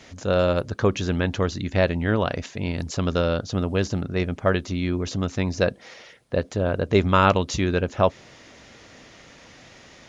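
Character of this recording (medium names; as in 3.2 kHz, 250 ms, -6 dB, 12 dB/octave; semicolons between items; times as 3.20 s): noise floor -49 dBFS; spectral tilt -5.5 dB/octave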